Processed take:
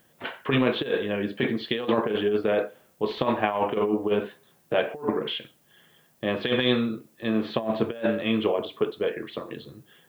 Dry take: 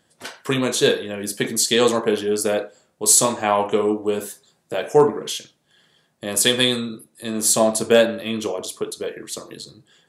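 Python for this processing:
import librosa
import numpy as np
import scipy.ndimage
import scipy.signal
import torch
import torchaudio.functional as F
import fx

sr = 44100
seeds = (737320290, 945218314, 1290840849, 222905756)

y = scipy.signal.sosfilt(scipy.signal.butter(8, 3300.0, 'lowpass', fs=sr, output='sos'), x)
y = fx.over_compress(y, sr, threshold_db=-21.0, ratio=-0.5)
y = fx.dmg_noise_colour(y, sr, seeds[0], colour='blue', level_db=-64.0)
y = y * librosa.db_to_amplitude(-1.5)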